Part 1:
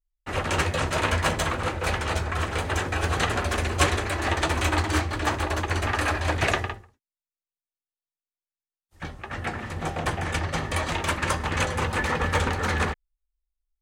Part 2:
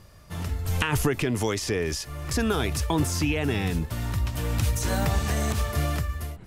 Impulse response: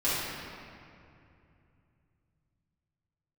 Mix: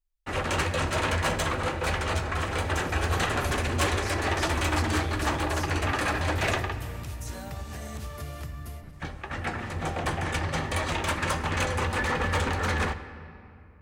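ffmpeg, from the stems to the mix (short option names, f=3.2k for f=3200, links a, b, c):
-filter_complex "[0:a]asoftclip=type=tanh:threshold=-19dB,volume=-1dB,asplit=2[a][b];[b]volume=-22dB[c];[1:a]acompressor=threshold=-33dB:ratio=6,adelay=2450,volume=-3dB,asplit=2[d][e];[e]volume=-18dB[f];[2:a]atrim=start_sample=2205[g];[c][f]amix=inputs=2:normalize=0[h];[h][g]afir=irnorm=-1:irlink=0[i];[a][d][i]amix=inputs=3:normalize=0"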